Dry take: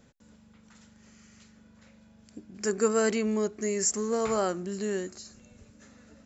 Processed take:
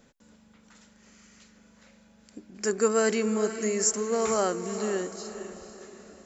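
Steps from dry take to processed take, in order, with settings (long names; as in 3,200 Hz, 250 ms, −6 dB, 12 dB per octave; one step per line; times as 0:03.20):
parametric band 100 Hz −10 dB 1.3 octaves
feedback delay with all-pass diffusion 472 ms, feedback 43%, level −10.5 dB
level +2 dB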